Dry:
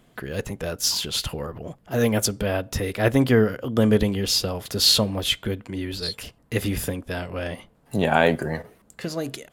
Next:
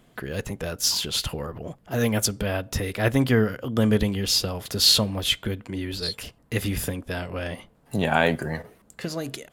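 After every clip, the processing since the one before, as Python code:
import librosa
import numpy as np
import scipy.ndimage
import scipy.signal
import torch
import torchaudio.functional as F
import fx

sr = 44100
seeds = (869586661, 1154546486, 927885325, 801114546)

y = fx.dynamic_eq(x, sr, hz=450.0, q=0.72, threshold_db=-30.0, ratio=4.0, max_db=-4)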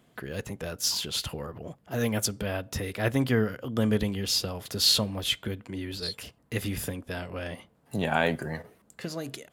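y = scipy.signal.sosfilt(scipy.signal.butter(2, 63.0, 'highpass', fs=sr, output='sos'), x)
y = y * librosa.db_to_amplitude(-4.5)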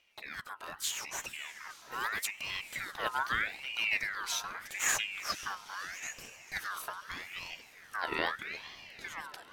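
y = fx.echo_diffused(x, sr, ms=510, feedback_pct=60, wet_db=-15.0)
y = fx.filter_lfo_notch(y, sr, shape='square', hz=4.4, low_hz=560.0, high_hz=7800.0, q=1.6)
y = fx.ring_lfo(y, sr, carrier_hz=1900.0, swing_pct=40, hz=0.8)
y = y * librosa.db_to_amplitude(-4.5)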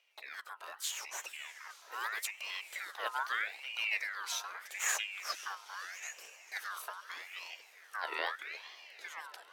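y = scipy.signal.sosfilt(scipy.signal.butter(4, 440.0, 'highpass', fs=sr, output='sos'), x)
y = y * librosa.db_to_amplitude(-3.0)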